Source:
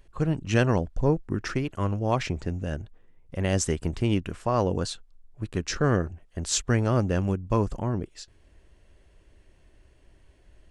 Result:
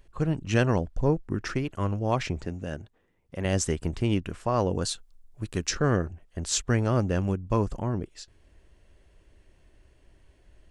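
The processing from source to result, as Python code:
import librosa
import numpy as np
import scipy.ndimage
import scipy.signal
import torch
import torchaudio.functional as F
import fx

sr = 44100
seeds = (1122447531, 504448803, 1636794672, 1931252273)

y = fx.highpass(x, sr, hz=140.0, slope=6, at=(2.45, 3.45))
y = fx.high_shelf(y, sr, hz=fx.line((4.81, 6000.0), (5.69, 4000.0)), db=10.0, at=(4.81, 5.69), fade=0.02)
y = F.gain(torch.from_numpy(y), -1.0).numpy()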